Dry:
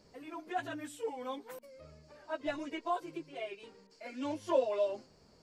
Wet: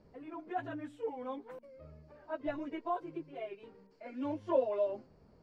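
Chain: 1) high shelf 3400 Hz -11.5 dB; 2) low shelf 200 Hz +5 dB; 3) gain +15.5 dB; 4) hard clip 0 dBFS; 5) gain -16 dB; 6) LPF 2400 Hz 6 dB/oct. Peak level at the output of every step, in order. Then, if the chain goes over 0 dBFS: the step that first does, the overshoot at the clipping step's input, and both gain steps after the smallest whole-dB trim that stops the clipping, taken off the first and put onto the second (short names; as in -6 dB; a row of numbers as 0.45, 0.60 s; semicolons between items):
-18.0, -17.5, -2.0, -2.0, -18.0, -18.5 dBFS; no overload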